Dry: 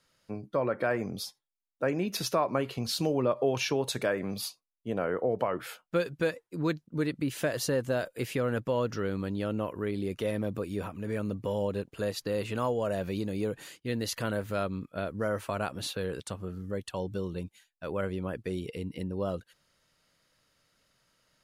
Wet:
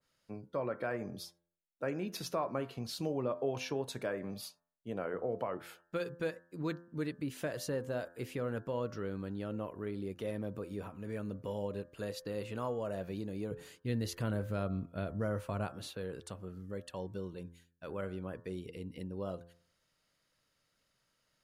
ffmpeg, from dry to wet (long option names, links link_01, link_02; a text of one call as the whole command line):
ffmpeg -i in.wav -filter_complex "[0:a]asettb=1/sr,asplit=3[link_01][link_02][link_03];[link_01]atrim=end=13.514[link_04];[link_02]atrim=start=13.51:end=15.68,asetpts=PTS-STARTPTS,afade=type=in:duration=0.004:curve=qsin,afade=type=out:start_time=2.166:duration=0.004:curve=qsin,lowshelf=frequency=200:gain=11[link_05];[link_03]atrim=start=15.676[link_06];[link_04][link_05]acrossfade=duration=0.004:curve1=hsin:curve2=qsin[link_07];[link_07][link_06]acrossfade=duration=0.004:curve1=qsin:curve2=hsin,bandreject=frequency=85.93:width_type=h:width=4,bandreject=frequency=171.86:width_type=h:width=4,bandreject=frequency=257.79:width_type=h:width=4,bandreject=frequency=343.72:width_type=h:width=4,bandreject=frequency=429.65:width_type=h:width=4,bandreject=frequency=515.58:width_type=h:width=4,bandreject=frequency=601.51:width_type=h:width=4,bandreject=frequency=687.44:width_type=h:width=4,bandreject=frequency=773.37:width_type=h:width=4,bandreject=frequency=859.3:width_type=h:width=4,bandreject=frequency=945.23:width_type=h:width=4,bandreject=frequency=1031.16:width_type=h:width=4,bandreject=frequency=1117.09:width_type=h:width=4,bandreject=frequency=1203.02:width_type=h:width=4,bandreject=frequency=1288.95:width_type=h:width=4,bandreject=frequency=1374.88:width_type=h:width=4,bandreject=frequency=1460.81:width_type=h:width=4,bandreject=frequency=1546.74:width_type=h:width=4,bandreject=frequency=1632.67:width_type=h:width=4,bandreject=frequency=1718.6:width_type=h:width=4,bandreject=frequency=1804.53:width_type=h:width=4,adynamicequalizer=threshold=0.00501:dfrequency=1600:dqfactor=0.7:tfrequency=1600:tqfactor=0.7:attack=5:release=100:ratio=0.375:range=2:mode=cutabove:tftype=highshelf,volume=-7dB" out.wav